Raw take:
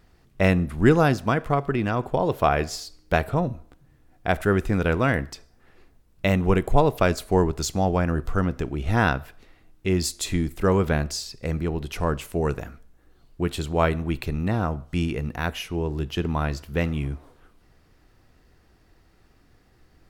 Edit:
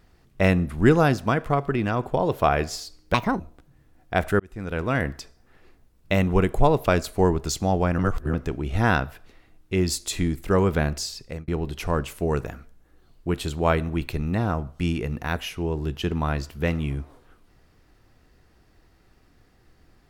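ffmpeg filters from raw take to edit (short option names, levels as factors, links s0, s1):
-filter_complex "[0:a]asplit=7[s0][s1][s2][s3][s4][s5][s6];[s0]atrim=end=3.144[s7];[s1]atrim=start=3.14:end=3.53,asetpts=PTS-STARTPTS,asetrate=67032,aresample=44100,atrim=end_sample=11315,asetpts=PTS-STARTPTS[s8];[s2]atrim=start=3.526:end=4.53,asetpts=PTS-STARTPTS,afade=t=out:st=1:d=0.004:c=hsin[s9];[s3]atrim=start=4.53:end=8.122,asetpts=PTS-STARTPTS,afade=t=in:d=0.71[s10];[s4]atrim=start=8.118:end=8.472,asetpts=PTS-STARTPTS,areverse[s11];[s5]atrim=start=8.468:end=11.61,asetpts=PTS-STARTPTS,afade=t=out:st=2.882:d=0.26[s12];[s6]atrim=start=11.61,asetpts=PTS-STARTPTS,afade=t=in:d=0.004:c=hsin[s13];[s7][s8]acrossfade=d=0.004:c1=hsin:c2=hsin[s14];[s9][s10]concat=n=2:v=0:a=1[s15];[s14][s15]acrossfade=d=0.004:c1=hsin:c2=hsin[s16];[s16][s11]acrossfade=d=0.004:c1=hsin:c2=hsin[s17];[s12][s13]concat=n=2:v=0:a=1[s18];[s17][s18]acrossfade=d=0.004:c1=hsin:c2=hsin"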